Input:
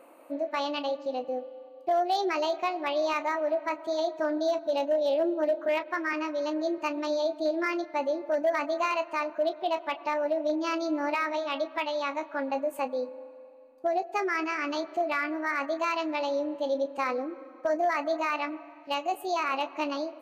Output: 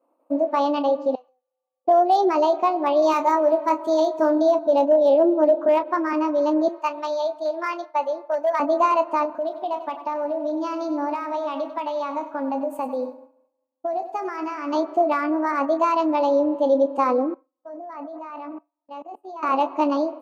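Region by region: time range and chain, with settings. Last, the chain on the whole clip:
1.15–1.85 s: high-pass 1.2 kHz + compression 3:1, threshold -56 dBFS
3.02–4.42 s: treble shelf 4.6 kHz +10 dB + band-stop 740 Hz, Q 5.7 + doubling 22 ms -8 dB
6.68–8.60 s: high-pass 800 Hz + dynamic bell 2.8 kHz, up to +4 dB, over -44 dBFS, Q 1.4
9.25–14.73 s: peaking EQ 410 Hz -8 dB 0.79 oct + compression 3:1, threshold -33 dBFS + bit-crushed delay 96 ms, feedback 35%, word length 11-bit, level -12 dB
17.34–19.43 s: low-pass 3.2 kHz 6 dB/octave + hum notches 60/120/180/240/300/360/420/480/540/600 Hz + level held to a coarse grid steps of 21 dB
whole clip: band-stop 4.1 kHz, Q 25; expander -39 dBFS; graphic EQ 250/500/1000/2000 Hz +11/+6/+11/-7 dB

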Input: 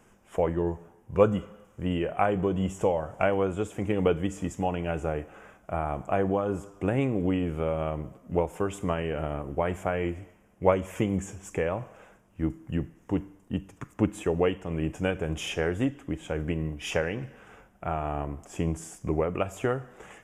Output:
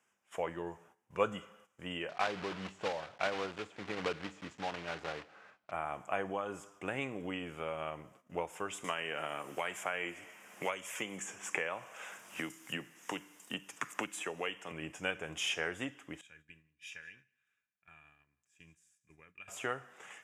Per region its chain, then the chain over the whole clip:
2.09–5.72 s: block-companded coder 3-bit + tape spacing loss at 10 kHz 26 dB
8.84–14.72 s: high-pass 120 Hz + tilt EQ +1.5 dB/octave + three bands compressed up and down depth 100%
16.21–19.48 s: amplifier tone stack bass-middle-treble 6-0-2 + small resonant body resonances 1.7/2.4/3.7 kHz, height 14 dB, ringing for 35 ms + delay 178 ms -19.5 dB
whole clip: frequency weighting A; gate -56 dBFS, range -11 dB; peaking EQ 460 Hz -8.5 dB 2.8 oct

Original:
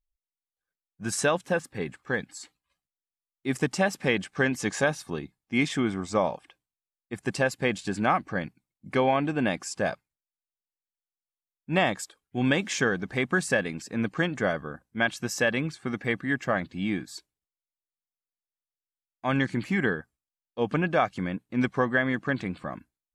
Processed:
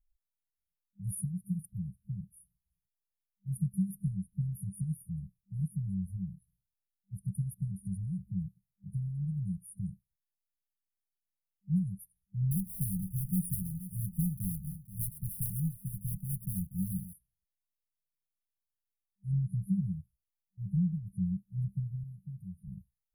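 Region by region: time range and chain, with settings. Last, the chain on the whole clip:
12.51–17.14 s: block-companded coder 3-bit + delay 479 ms -14 dB
22.03–22.68 s: bass shelf 440 Hz -10 dB + doubling 13 ms -13 dB
whole clip: FFT band-reject 200–9400 Hz; bass shelf 65 Hz +9.5 dB

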